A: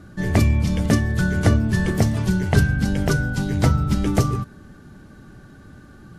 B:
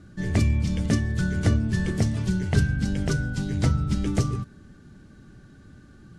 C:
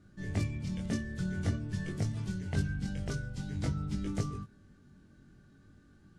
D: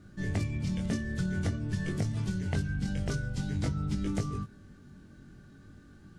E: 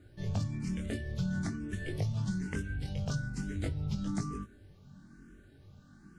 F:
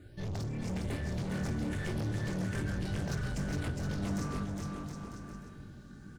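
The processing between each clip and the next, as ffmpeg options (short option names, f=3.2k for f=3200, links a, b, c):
-af "lowpass=f=9.7k:w=0.5412,lowpass=f=9.7k:w=1.3066,equalizer=f=850:t=o:w=1.7:g=-6.5,volume=-4dB"
-af "flanger=delay=19.5:depth=2.6:speed=0.47,volume=-7.5dB"
-af "acompressor=threshold=-34dB:ratio=4,volume=6.5dB"
-filter_complex "[0:a]asplit=2[a][b];[b]afreqshift=1.1[c];[a][c]amix=inputs=2:normalize=1"
-filter_complex "[0:a]asoftclip=type=hard:threshold=-38.5dB,asplit=2[a][b];[b]aecho=0:1:410|717.5|948.1|1121|1251:0.631|0.398|0.251|0.158|0.1[c];[a][c]amix=inputs=2:normalize=0,volume=4dB"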